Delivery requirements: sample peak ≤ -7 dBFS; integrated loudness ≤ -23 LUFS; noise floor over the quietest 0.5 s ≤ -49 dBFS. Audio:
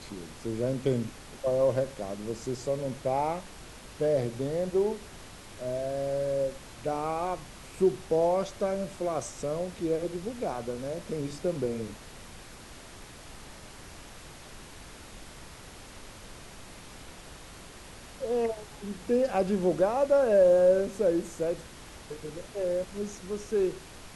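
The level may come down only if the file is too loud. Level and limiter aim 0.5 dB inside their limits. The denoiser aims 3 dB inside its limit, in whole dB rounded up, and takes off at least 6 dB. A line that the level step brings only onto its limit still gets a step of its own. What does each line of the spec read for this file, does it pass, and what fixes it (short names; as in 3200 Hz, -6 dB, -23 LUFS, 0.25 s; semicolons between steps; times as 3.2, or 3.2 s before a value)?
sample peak -13.0 dBFS: OK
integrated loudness -29.5 LUFS: OK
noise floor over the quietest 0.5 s -47 dBFS: fail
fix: denoiser 6 dB, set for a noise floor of -47 dBFS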